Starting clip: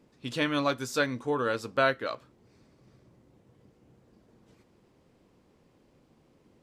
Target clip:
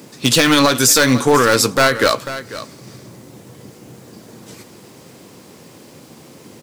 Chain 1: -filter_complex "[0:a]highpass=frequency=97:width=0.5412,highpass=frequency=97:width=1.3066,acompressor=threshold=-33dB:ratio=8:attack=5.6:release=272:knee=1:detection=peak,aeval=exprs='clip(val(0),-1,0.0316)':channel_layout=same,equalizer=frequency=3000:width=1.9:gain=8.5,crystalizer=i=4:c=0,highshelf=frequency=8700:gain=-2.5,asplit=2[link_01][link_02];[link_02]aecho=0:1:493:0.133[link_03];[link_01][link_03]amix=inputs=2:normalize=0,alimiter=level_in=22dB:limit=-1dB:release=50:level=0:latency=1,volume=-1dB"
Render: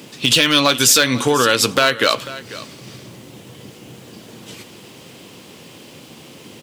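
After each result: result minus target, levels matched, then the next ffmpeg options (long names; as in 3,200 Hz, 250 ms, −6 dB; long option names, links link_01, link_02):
downward compressor: peak gain reduction +8 dB; 4,000 Hz band +3.5 dB
-filter_complex "[0:a]highpass=frequency=97:width=0.5412,highpass=frequency=97:width=1.3066,acompressor=threshold=-24dB:ratio=8:attack=5.6:release=272:knee=1:detection=peak,aeval=exprs='clip(val(0),-1,0.0316)':channel_layout=same,equalizer=frequency=3000:width=1.9:gain=8.5,crystalizer=i=4:c=0,highshelf=frequency=8700:gain=-2.5,asplit=2[link_01][link_02];[link_02]aecho=0:1:493:0.133[link_03];[link_01][link_03]amix=inputs=2:normalize=0,alimiter=level_in=22dB:limit=-1dB:release=50:level=0:latency=1,volume=-1dB"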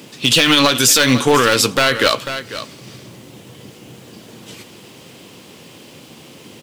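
4,000 Hz band +3.5 dB
-filter_complex "[0:a]highpass=frequency=97:width=0.5412,highpass=frequency=97:width=1.3066,acompressor=threshold=-24dB:ratio=8:attack=5.6:release=272:knee=1:detection=peak,aeval=exprs='clip(val(0),-1,0.0316)':channel_layout=same,equalizer=frequency=3000:width=1.9:gain=-2,crystalizer=i=4:c=0,highshelf=frequency=8700:gain=-2.5,asplit=2[link_01][link_02];[link_02]aecho=0:1:493:0.133[link_03];[link_01][link_03]amix=inputs=2:normalize=0,alimiter=level_in=22dB:limit=-1dB:release=50:level=0:latency=1,volume=-1dB"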